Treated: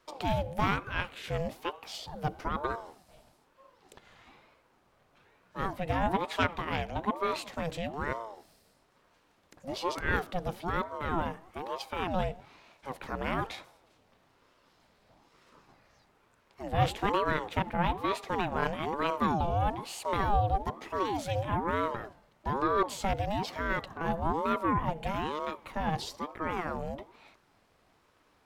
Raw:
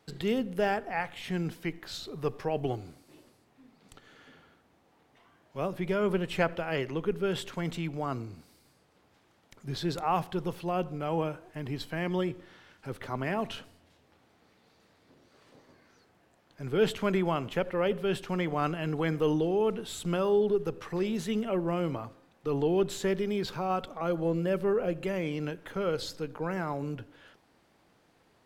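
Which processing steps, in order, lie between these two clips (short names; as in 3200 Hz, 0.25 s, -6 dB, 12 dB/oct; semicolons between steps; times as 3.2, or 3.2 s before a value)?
added harmonics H 4 -20 dB, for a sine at -11 dBFS; ring modulator with a swept carrier 560 Hz, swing 45%, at 1.1 Hz; gain +1.5 dB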